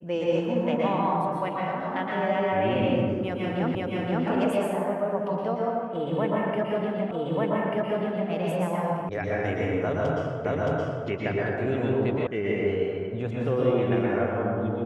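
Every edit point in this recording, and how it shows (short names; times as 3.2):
3.75 repeat of the last 0.52 s
7.11 repeat of the last 1.19 s
9.09 sound cut off
10.45 repeat of the last 0.62 s
12.27 sound cut off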